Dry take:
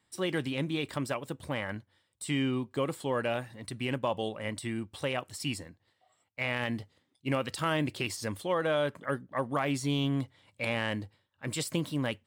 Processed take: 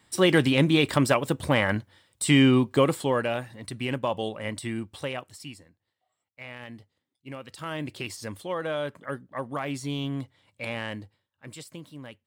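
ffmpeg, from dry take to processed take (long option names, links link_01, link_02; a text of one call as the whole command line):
ffmpeg -i in.wav -af "volume=19.5dB,afade=type=out:start_time=2.67:duration=0.61:silence=0.375837,afade=type=out:start_time=4.79:duration=0.75:silence=0.237137,afade=type=in:start_time=7.44:duration=0.54:silence=0.398107,afade=type=out:start_time=10.82:duration=0.88:silence=0.334965" out.wav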